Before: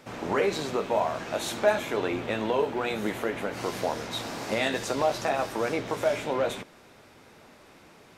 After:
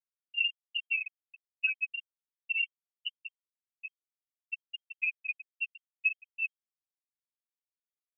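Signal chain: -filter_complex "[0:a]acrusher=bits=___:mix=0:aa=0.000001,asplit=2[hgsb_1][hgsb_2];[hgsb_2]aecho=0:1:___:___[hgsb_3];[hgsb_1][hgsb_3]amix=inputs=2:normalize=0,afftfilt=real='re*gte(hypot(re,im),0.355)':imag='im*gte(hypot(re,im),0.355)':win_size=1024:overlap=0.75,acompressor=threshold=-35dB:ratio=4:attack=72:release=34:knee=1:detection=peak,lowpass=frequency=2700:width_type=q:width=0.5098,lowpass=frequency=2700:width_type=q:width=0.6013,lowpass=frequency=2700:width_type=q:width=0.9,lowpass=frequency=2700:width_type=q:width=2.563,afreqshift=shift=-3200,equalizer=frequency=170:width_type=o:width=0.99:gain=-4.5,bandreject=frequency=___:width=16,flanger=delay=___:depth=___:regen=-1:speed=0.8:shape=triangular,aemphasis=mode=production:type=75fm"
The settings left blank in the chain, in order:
3, 155, 0.282, 2200, 1.7, 3.9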